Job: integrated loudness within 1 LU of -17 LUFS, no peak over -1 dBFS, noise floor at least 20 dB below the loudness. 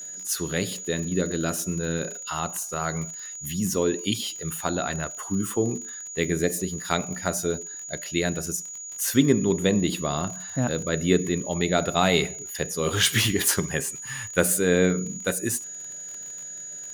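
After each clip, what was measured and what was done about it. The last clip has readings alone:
ticks 39/s; steady tone 6800 Hz; tone level -35 dBFS; loudness -25.5 LUFS; peak -5.0 dBFS; loudness target -17.0 LUFS
-> de-click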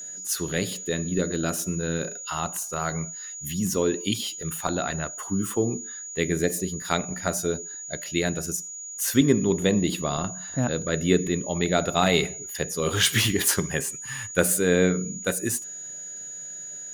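ticks 1.9/s; steady tone 6800 Hz; tone level -35 dBFS
-> notch 6800 Hz, Q 30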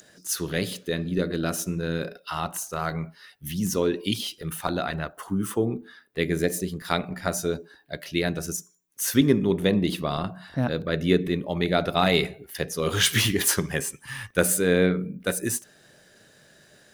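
steady tone none; loudness -26.0 LUFS; peak -5.0 dBFS; loudness target -17.0 LUFS
-> gain +9 dB; limiter -1 dBFS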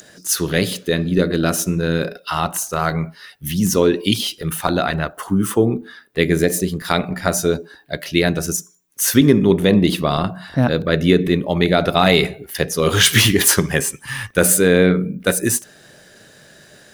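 loudness -17.5 LUFS; peak -1.0 dBFS; noise floor -48 dBFS

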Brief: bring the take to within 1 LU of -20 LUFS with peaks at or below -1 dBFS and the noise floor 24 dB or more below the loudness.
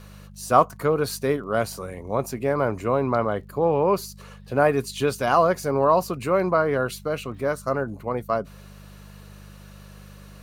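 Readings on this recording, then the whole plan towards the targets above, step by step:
ticks 20/s; hum 50 Hz; harmonics up to 200 Hz; hum level -43 dBFS; loudness -23.5 LUFS; peak -2.5 dBFS; loudness target -20.0 LUFS
-> de-click; de-hum 50 Hz, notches 4; gain +3.5 dB; limiter -1 dBFS

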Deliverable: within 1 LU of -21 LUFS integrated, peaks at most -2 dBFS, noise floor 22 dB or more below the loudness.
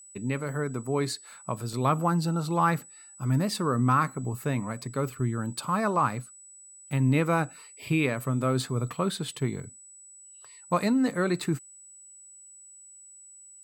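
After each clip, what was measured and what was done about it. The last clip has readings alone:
dropouts 3; longest dropout 1.3 ms; steady tone 7900 Hz; tone level -48 dBFS; loudness -28.0 LUFS; peak -11.5 dBFS; loudness target -21.0 LUFS
-> interpolate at 1.73/9.28/11.11, 1.3 ms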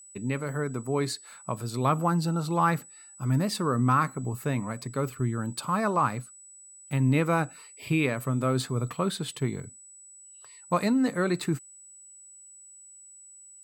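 dropouts 0; steady tone 7900 Hz; tone level -48 dBFS
-> notch 7900 Hz, Q 30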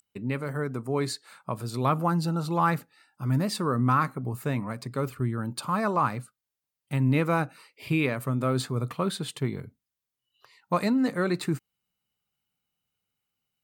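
steady tone none; loudness -28.0 LUFS; peak -11.0 dBFS; loudness target -21.0 LUFS
-> gain +7 dB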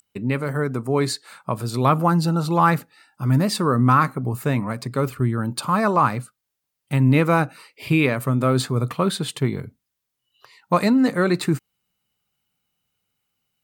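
loudness -21.0 LUFS; peak -4.0 dBFS; noise floor -81 dBFS

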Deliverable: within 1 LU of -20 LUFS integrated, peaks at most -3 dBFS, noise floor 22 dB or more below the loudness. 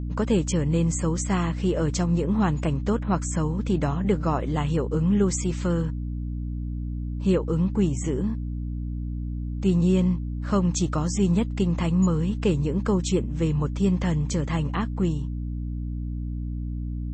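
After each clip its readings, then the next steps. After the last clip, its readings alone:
hum 60 Hz; harmonics up to 300 Hz; hum level -28 dBFS; loudness -25.5 LUFS; peak -9.5 dBFS; loudness target -20.0 LUFS
-> notches 60/120/180/240/300 Hz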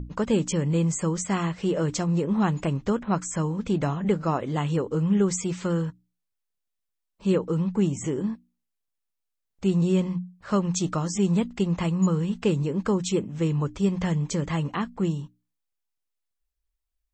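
hum none; loudness -26.0 LUFS; peak -10.5 dBFS; loudness target -20.0 LUFS
-> gain +6 dB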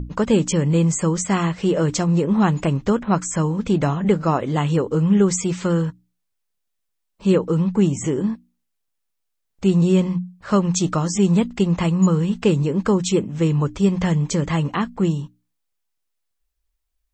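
loudness -20.0 LUFS; peak -4.5 dBFS; noise floor -75 dBFS

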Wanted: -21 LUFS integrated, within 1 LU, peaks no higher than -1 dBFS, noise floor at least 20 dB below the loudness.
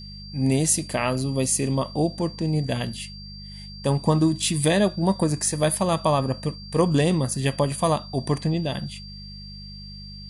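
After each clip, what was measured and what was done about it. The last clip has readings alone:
hum 50 Hz; harmonics up to 200 Hz; hum level -39 dBFS; steady tone 4700 Hz; tone level -41 dBFS; loudness -23.5 LUFS; peak -5.5 dBFS; loudness target -21.0 LUFS
-> de-hum 50 Hz, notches 4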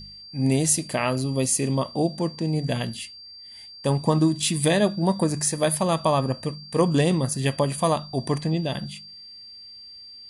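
hum none; steady tone 4700 Hz; tone level -41 dBFS
-> notch 4700 Hz, Q 30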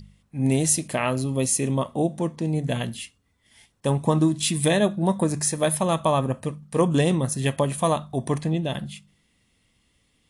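steady tone none; loudness -24.0 LUFS; peak -6.5 dBFS; loudness target -21.0 LUFS
-> gain +3 dB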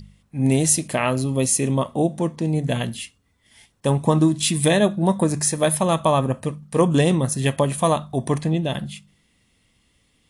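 loudness -21.0 LUFS; peak -3.5 dBFS; noise floor -64 dBFS

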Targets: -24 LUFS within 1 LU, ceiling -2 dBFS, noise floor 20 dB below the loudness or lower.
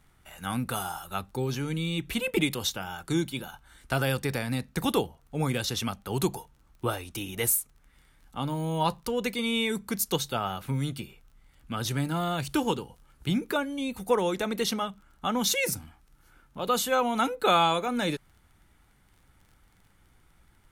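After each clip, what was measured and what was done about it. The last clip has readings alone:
ticks 19/s; loudness -29.0 LUFS; peak -10.5 dBFS; loudness target -24.0 LUFS
-> de-click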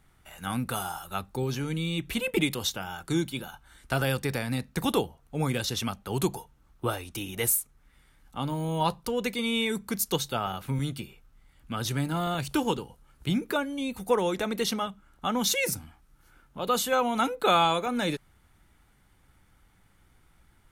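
ticks 0.34/s; loudness -29.0 LUFS; peak -10.5 dBFS; loudness target -24.0 LUFS
-> gain +5 dB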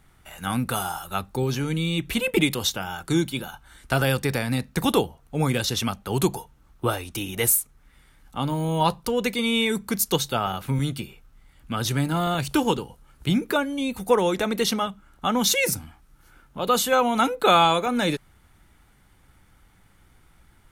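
loudness -24.0 LUFS; peak -5.5 dBFS; noise floor -58 dBFS

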